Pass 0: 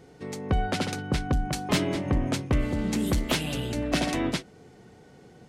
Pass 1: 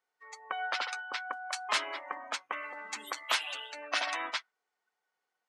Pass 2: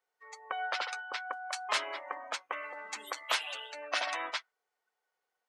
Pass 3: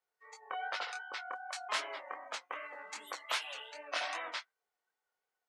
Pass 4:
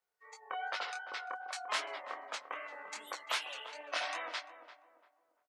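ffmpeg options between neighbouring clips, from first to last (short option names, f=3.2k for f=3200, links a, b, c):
-af "highpass=f=1.1k:t=q:w=1.7,afftdn=nr=25:nf=-38,volume=-1.5dB"
-af "equalizer=f=125:t=o:w=1:g=-5,equalizer=f=250:t=o:w=1:g=-4,equalizer=f=500:t=o:w=1:g=5,volume=-1.5dB"
-af "flanger=delay=19.5:depth=6.2:speed=2.6,volume=-1dB"
-filter_complex "[0:a]asplit=2[a][b];[b]adelay=344,lowpass=f=1.1k:p=1,volume=-10dB,asplit=2[c][d];[d]adelay=344,lowpass=f=1.1k:p=1,volume=0.38,asplit=2[e][f];[f]adelay=344,lowpass=f=1.1k:p=1,volume=0.38,asplit=2[g][h];[h]adelay=344,lowpass=f=1.1k:p=1,volume=0.38[i];[a][c][e][g][i]amix=inputs=5:normalize=0"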